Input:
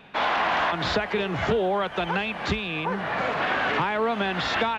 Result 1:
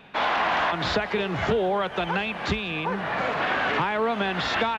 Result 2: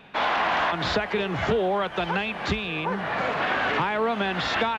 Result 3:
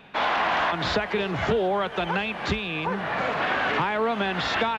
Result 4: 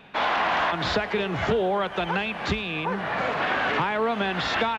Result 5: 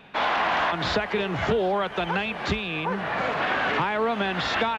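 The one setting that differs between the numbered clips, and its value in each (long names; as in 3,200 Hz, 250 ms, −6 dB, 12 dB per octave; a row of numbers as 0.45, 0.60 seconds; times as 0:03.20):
repeating echo, delay time: 195, 1,150, 359, 106, 765 milliseconds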